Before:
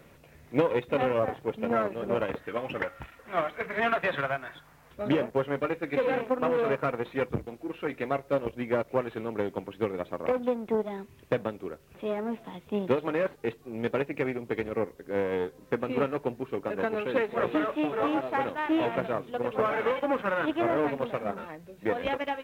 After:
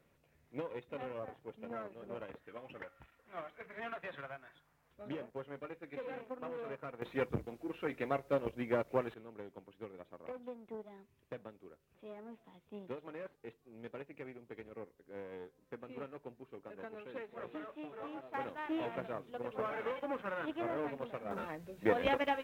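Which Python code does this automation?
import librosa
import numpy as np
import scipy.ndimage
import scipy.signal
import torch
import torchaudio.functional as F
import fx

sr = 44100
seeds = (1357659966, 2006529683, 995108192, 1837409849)

y = fx.gain(x, sr, db=fx.steps((0.0, -17.0), (7.02, -6.0), (9.14, -18.5), (18.34, -11.5), (21.31, -2.0)))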